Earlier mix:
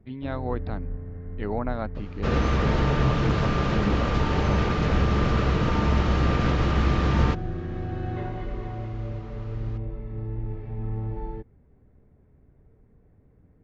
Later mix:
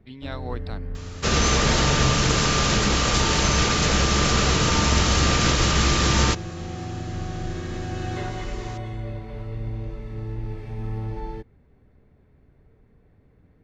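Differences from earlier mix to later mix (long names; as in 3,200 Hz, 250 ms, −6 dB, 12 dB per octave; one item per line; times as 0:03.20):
speech −6.0 dB
second sound: entry −1.00 s
master: remove head-to-tape spacing loss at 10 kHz 39 dB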